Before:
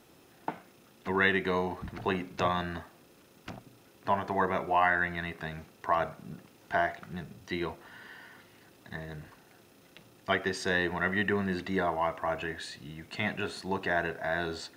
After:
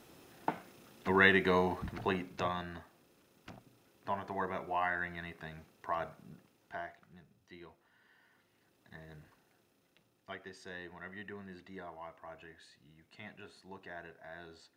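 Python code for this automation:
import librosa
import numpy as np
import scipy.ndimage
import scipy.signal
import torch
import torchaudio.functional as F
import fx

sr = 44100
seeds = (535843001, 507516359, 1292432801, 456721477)

y = fx.gain(x, sr, db=fx.line((1.74, 0.5), (2.65, -8.5), (6.18, -8.5), (7.27, -19.5), (7.95, -19.5), (9.16, -10.5), (10.4, -18.0)))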